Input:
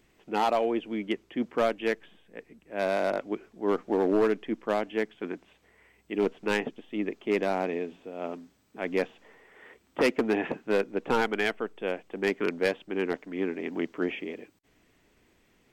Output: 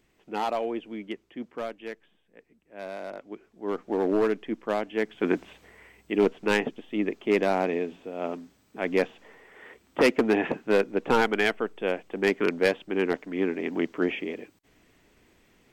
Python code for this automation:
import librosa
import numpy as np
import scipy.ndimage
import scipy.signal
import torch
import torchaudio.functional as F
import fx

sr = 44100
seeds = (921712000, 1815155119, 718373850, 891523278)

y = fx.gain(x, sr, db=fx.line((0.69, -3.0), (1.91, -10.0), (3.15, -10.0), (4.05, 0.0), (4.95, 0.0), (5.34, 12.0), (6.34, 3.5)))